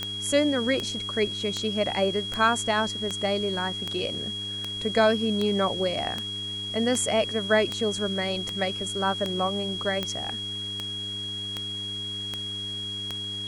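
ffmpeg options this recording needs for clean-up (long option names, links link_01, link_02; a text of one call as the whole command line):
ffmpeg -i in.wav -af "adeclick=threshold=4,bandreject=frequency=102.7:width_type=h:width=4,bandreject=frequency=205.4:width_type=h:width=4,bandreject=frequency=308.1:width_type=h:width=4,bandreject=frequency=410.8:width_type=h:width=4,bandreject=frequency=3300:width=30,afwtdn=0.004" out.wav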